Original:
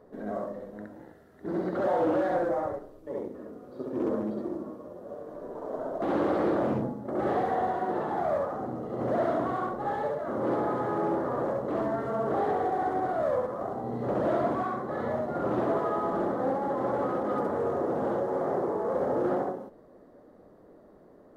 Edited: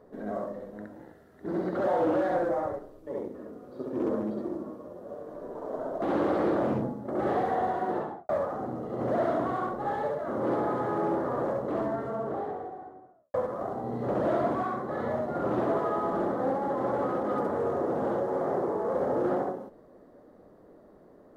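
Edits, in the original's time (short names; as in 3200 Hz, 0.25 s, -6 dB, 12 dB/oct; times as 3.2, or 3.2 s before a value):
7.93–8.29 studio fade out
11.54–13.34 studio fade out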